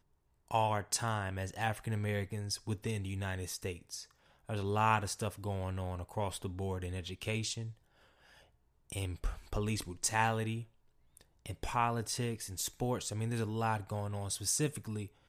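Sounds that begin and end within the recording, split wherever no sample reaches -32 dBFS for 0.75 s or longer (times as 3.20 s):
8.90–10.54 s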